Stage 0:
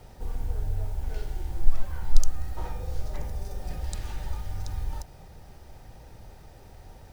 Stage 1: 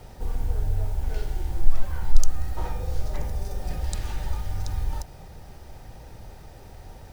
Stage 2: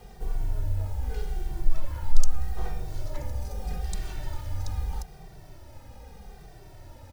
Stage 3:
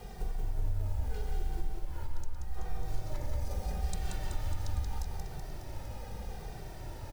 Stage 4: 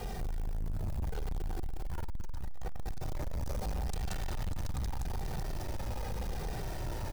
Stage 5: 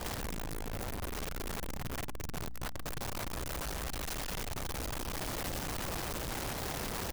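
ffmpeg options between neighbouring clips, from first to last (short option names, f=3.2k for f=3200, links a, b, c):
-af "acontrast=28,volume=-1dB"
-filter_complex "[0:a]asplit=2[a][b];[b]adelay=2.1,afreqshift=-0.8[c];[a][c]amix=inputs=2:normalize=1"
-af "acompressor=threshold=-33dB:ratio=6,aecho=1:1:180|378|595.8|835.4|1099:0.631|0.398|0.251|0.158|0.1,volume=2dB"
-af "alimiter=level_in=4dB:limit=-24dB:level=0:latency=1:release=33,volume=-4dB,asoftclip=type=tanh:threshold=-40dB,volume=9dB"
-af "aeval=exprs='(mod(50.1*val(0)+1,2)-1)/50.1':c=same,aeval=exprs='val(0)+0.00282*(sin(2*PI*60*n/s)+sin(2*PI*2*60*n/s)/2+sin(2*PI*3*60*n/s)/3+sin(2*PI*4*60*n/s)/4+sin(2*PI*5*60*n/s)/5)':c=same"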